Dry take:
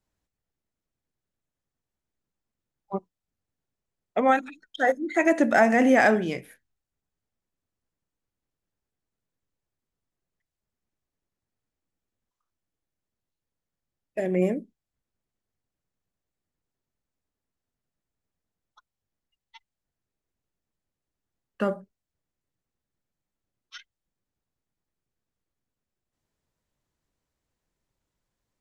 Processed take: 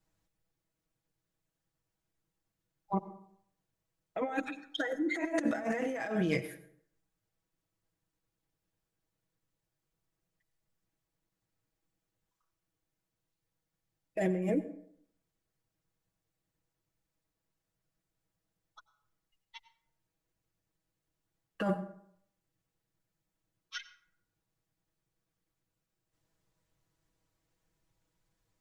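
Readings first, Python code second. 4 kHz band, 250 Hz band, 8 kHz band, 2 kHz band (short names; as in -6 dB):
-2.5 dB, -8.5 dB, -8.5 dB, -12.5 dB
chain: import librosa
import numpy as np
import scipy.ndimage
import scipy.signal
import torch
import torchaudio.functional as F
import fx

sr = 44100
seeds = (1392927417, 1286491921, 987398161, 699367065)

y = fx.peak_eq(x, sr, hz=100.0, db=10.5, octaves=0.22)
y = y + 0.95 * np.pad(y, (int(6.2 * sr / 1000.0), 0))[:len(y)]
y = fx.over_compress(y, sr, threshold_db=-26.0, ratio=-1.0)
y = fx.rev_plate(y, sr, seeds[0], rt60_s=0.66, hf_ratio=0.55, predelay_ms=80, drr_db=14.5)
y = y * librosa.db_to_amplitude(-7.0)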